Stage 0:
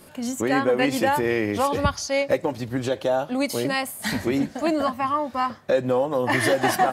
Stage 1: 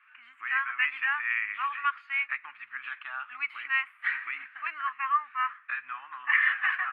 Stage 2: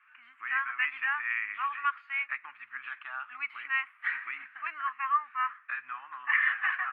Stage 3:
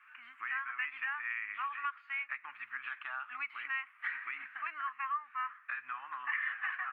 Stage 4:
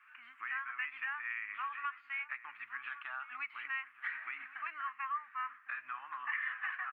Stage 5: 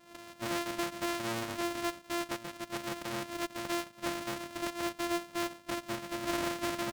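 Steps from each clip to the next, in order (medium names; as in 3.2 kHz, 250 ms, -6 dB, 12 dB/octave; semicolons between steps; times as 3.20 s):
elliptic band-pass 1.2–2.6 kHz, stop band 50 dB; level rider gain up to 4 dB; trim -1.5 dB
treble shelf 3.5 kHz -10.5 dB
compression 2.5:1, threshold -41 dBFS, peak gain reduction 13 dB; trim +2.5 dB
echo from a far wall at 190 m, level -13 dB; trim -2 dB
sorted samples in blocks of 128 samples; waveshaping leveller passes 1; loudspeaker Doppler distortion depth 0.49 ms; trim +3 dB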